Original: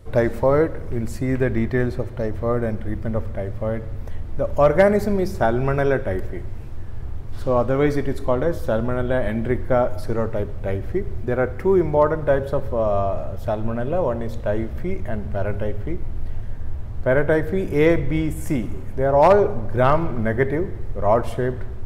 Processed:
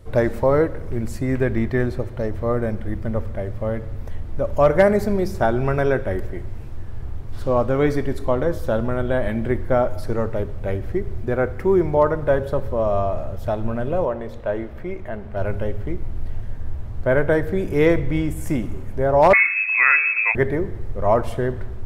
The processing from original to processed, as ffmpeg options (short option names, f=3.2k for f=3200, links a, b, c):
-filter_complex "[0:a]asettb=1/sr,asplit=3[a][b][c];[a]atrim=end=14.054[d];[b]atrim=start=14.05:end=15.37,asetpts=PTS-STARTPTS,afade=t=in:d=0.004:c=qsin,afade=t=out:st=1.316:d=0.004:c=qsin,bass=f=250:g=-8,treble=f=4k:g=-9[e];[c]atrim=start=15.366[f];[d][e]acrossfade=d=0.004:c1=hsin:c2=qsin[g];[g][f]acrossfade=d=0.004:c1=qsin:c2=hsin,asettb=1/sr,asplit=3[h][i][j];[h]atrim=end=19.334[k];[i]atrim=start=19.33:end=20.35,asetpts=PTS-STARTPTS,afade=t=in:d=0.004:c=qsin,afade=t=out:st=1.016:d=0.004:c=qsin,lowpass=f=2.2k:t=q:w=0.5098,lowpass=f=2.2k:t=q:w=0.6013,lowpass=f=2.2k:t=q:w=0.9,lowpass=f=2.2k:t=q:w=2.563,afreqshift=-2600[l];[j]atrim=start=20.346[m];[k][l]acrossfade=d=0.004:c1=hsin:c2=qsin[n];[n][m]acrossfade=d=0.004:c1=qsin:c2=hsin"